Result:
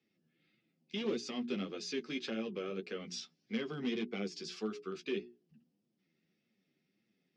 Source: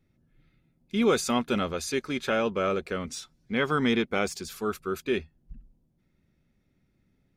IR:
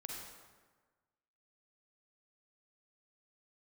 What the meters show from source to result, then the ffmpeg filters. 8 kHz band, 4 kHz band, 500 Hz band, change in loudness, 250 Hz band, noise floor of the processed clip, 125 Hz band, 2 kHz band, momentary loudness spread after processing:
-13.5 dB, -8.0 dB, -11.5 dB, -11.5 dB, -9.5 dB, -82 dBFS, -12.0 dB, -14.0 dB, 5 LU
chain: -filter_complex "[0:a]bandreject=f=60:t=h:w=6,bandreject=f=120:t=h:w=6,bandreject=f=180:t=h:w=6,bandreject=f=240:t=h:w=6,bandreject=f=300:t=h:w=6,bandreject=f=360:t=h:w=6,bandreject=f=420:t=h:w=6,acrossover=split=370[a][b];[b]acompressor=threshold=-37dB:ratio=6[c];[a][c]amix=inputs=2:normalize=0,volume=23.5dB,asoftclip=hard,volume=-23.5dB,flanger=delay=8.2:depth=5.1:regen=15:speed=1.7:shape=triangular,highpass=f=190:w=0.5412,highpass=f=190:w=1.3066,equalizer=f=260:t=q:w=4:g=-4,equalizer=f=590:t=q:w=4:g=-6,equalizer=f=950:t=q:w=4:g=-9,equalizer=f=1.4k:t=q:w=4:g=-6,equalizer=f=2.9k:t=q:w=4:g=6,equalizer=f=5.1k:t=q:w=4:g=7,lowpass=f=5.9k:w=0.5412,lowpass=f=5.9k:w=1.3066"

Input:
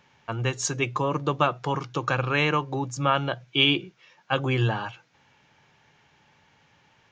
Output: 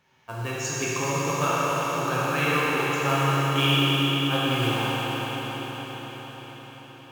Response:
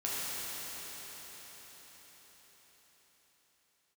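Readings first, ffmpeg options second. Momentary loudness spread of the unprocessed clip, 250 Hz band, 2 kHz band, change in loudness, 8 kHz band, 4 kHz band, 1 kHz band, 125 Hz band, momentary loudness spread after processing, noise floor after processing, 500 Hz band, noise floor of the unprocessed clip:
8 LU, +3.0 dB, +2.0 dB, +1.0 dB, +3.5 dB, +2.0 dB, +2.0 dB, +1.5 dB, 18 LU, -46 dBFS, +1.0 dB, -62 dBFS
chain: -filter_complex "[0:a]acrusher=bits=4:mode=log:mix=0:aa=0.000001[a];[1:a]atrim=start_sample=2205,asetrate=41454,aresample=44100[b];[a][b]afir=irnorm=-1:irlink=0,volume=-5.5dB"

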